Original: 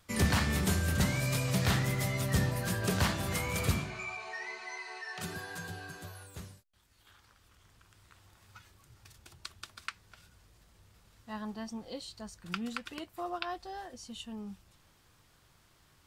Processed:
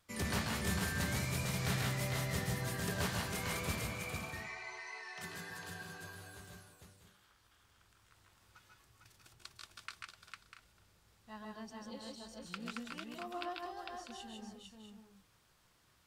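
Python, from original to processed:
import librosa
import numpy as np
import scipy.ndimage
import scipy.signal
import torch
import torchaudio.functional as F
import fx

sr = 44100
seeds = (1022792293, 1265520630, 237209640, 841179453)

p1 = fx.low_shelf(x, sr, hz=200.0, db=-4.5)
p2 = p1 + fx.echo_multitap(p1, sr, ms=(139, 156, 452, 646, 682), db=(-5.0, -3.5, -3.5, -10.5, -14.0), dry=0)
y = p2 * librosa.db_to_amplitude(-8.0)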